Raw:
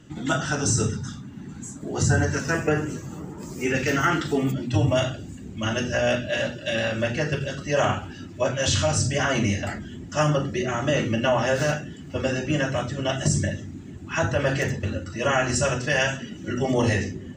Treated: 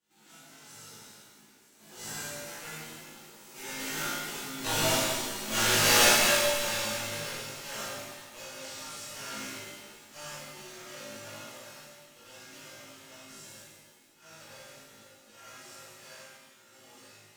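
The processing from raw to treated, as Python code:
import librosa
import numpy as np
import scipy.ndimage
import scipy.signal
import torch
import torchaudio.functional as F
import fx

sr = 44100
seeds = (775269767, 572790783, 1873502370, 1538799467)

p1 = fx.envelope_flatten(x, sr, power=0.3)
p2 = fx.doppler_pass(p1, sr, speed_mps=7, closest_m=2.4, pass_at_s=5.77)
p3 = fx.tremolo_random(p2, sr, seeds[0], hz=3.5, depth_pct=55)
p4 = fx.cheby_harmonics(p3, sr, harmonics=(3, 4, 5, 7), levels_db=(-11, -12, -17, -26), full_scale_db=-13.0)
p5 = np.clip(10.0 ** (27.0 / 20.0) * p4, -1.0, 1.0) / 10.0 ** (27.0 / 20.0)
p6 = p4 + (p5 * 10.0 ** (-5.5 / 20.0))
p7 = fx.peak_eq(p6, sr, hz=82.0, db=-14.5, octaves=0.87)
p8 = fx.comb_fb(p7, sr, f0_hz=53.0, decay_s=0.41, harmonics='all', damping=0.0, mix_pct=90)
p9 = fx.rev_shimmer(p8, sr, seeds[1], rt60_s=1.6, semitones=7, shimmer_db=-8, drr_db=-10.0)
y = p9 * 10.0 ** (2.5 / 20.0)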